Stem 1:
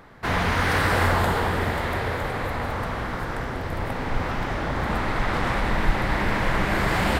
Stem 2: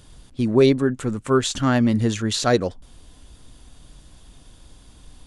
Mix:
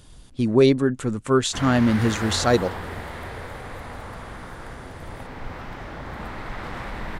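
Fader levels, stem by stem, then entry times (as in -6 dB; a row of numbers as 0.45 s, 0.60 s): -9.0 dB, -0.5 dB; 1.30 s, 0.00 s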